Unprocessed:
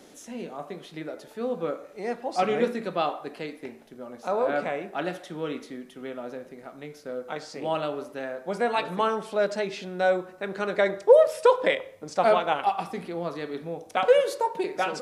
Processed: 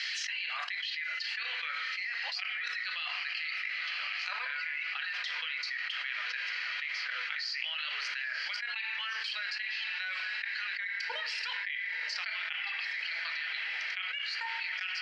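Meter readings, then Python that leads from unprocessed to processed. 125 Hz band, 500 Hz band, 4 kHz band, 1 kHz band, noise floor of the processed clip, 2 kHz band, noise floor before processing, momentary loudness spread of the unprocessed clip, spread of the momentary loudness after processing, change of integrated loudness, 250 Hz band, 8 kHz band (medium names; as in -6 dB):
under -40 dB, -36.0 dB, +5.5 dB, -16.5 dB, -38 dBFS, +3.5 dB, -50 dBFS, 17 LU, 0 LU, -7.5 dB, under -40 dB, no reading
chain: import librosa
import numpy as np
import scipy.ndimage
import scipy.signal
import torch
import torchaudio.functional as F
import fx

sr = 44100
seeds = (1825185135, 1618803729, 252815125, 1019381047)

y = fx.notch(x, sr, hz=3600.0, q=5.1)
y = fx.dereverb_blind(y, sr, rt60_s=0.85)
y = scipy.signal.sosfilt(scipy.signal.ellip(3, 1.0, 80, [1800.0, 4600.0], 'bandpass', fs=sr, output='sos'), y)
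y = fx.level_steps(y, sr, step_db=19)
y = fx.echo_diffused(y, sr, ms=972, feedback_pct=71, wet_db=-15.5)
y = fx.rev_fdn(y, sr, rt60_s=0.87, lf_ratio=1.45, hf_ratio=0.6, size_ms=20.0, drr_db=7.0)
y = fx.env_flatten(y, sr, amount_pct=100)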